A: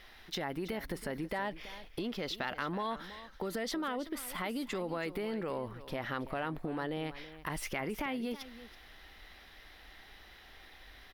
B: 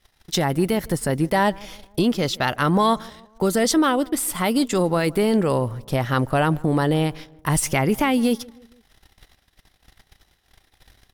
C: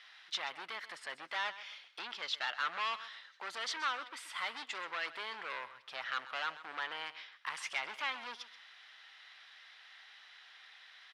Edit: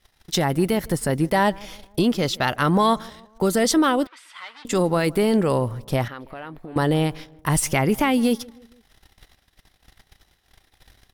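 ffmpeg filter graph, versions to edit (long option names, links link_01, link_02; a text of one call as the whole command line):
ffmpeg -i take0.wav -i take1.wav -i take2.wav -filter_complex "[1:a]asplit=3[link_01][link_02][link_03];[link_01]atrim=end=4.072[link_04];[2:a]atrim=start=4.068:end=4.652[link_05];[link_02]atrim=start=4.648:end=6.082[link_06];[0:a]atrim=start=6.078:end=6.762[link_07];[link_03]atrim=start=6.758[link_08];[link_04][link_05]acrossfade=duration=0.004:curve1=hsin:curve2=hsin[link_09];[link_09][link_06]acrossfade=duration=0.004:curve1=hsin:curve2=hsin[link_10];[link_10][link_07]acrossfade=duration=0.004:curve1=hsin:curve2=hsin[link_11];[link_11][link_08]acrossfade=duration=0.004:curve1=hsin:curve2=hsin" out.wav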